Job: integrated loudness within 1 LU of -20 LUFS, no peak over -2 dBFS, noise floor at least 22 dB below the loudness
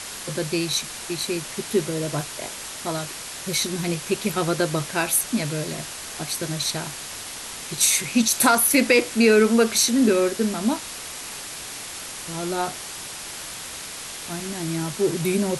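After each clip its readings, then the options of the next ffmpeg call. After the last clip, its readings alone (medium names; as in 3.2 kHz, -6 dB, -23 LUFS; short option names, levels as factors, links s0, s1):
noise floor -36 dBFS; noise floor target -46 dBFS; loudness -23.5 LUFS; peak level -2.5 dBFS; loudness target -20.0 LUFS
-> -af "afftdn=nr=10:nf=-36"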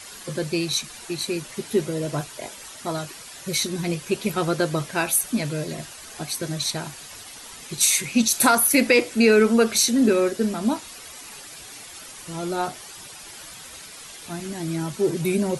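noise floor -41 dBFS; noise floor target -45 dBFS
-> -af "afftdn=nr=6:nf=-41"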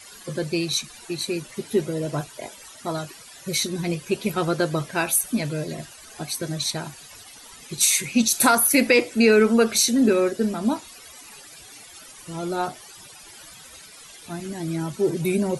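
noise floor -45 dBFS; loudness -22.5 LUFS; peak level -2.5 dBFS; loudness target -20.0 LUFS
-> -af "volume=1.33,alimiter=limit=0.794:level=0:latency=1"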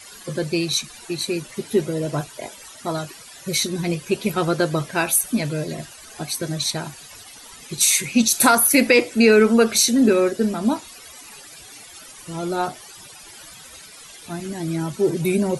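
loudness -20.0 LUFS; peak level -2.0 dBFS; noise floor -43 dBFS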